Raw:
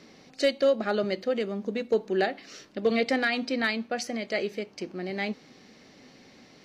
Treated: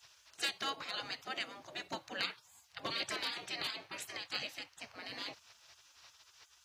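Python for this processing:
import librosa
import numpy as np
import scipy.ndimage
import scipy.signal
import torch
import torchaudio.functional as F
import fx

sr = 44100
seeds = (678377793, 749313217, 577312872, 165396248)

y = scipy.signal.sosfilt(scipy.signal.butter(4, 71.0, 'highpass', fs=sr, output='sos'), x)
y = fx.spec_gate(y, sr, threshold_db=-20, keep='weak')
y = fx.high_shelf(y, sr, hz=6000.0, db=5.0)
y = y * librosa.db_to_amplitude(1.0)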